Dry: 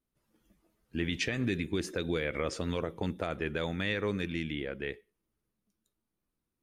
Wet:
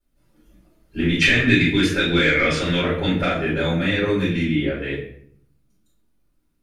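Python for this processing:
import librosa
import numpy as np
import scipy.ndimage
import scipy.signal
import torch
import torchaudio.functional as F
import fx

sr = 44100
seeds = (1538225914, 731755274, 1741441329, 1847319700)

y = fx.band_shelf(x, sr, hz=2300.0, db=10.0, octaves=1.7, at=(1.21, 3.3))
y = 10.0 ** (-14.5 / 20.0) * np.tanh(y / 10.0 ** (-14.5 / 20.0))
y = fx.room_shoebox(y, sr, seeds[0], volume_m3=90.0, walls='mixed', distance_m=4.4)
y = F.gain(torch.from_numpy(y), -4.0).numpy()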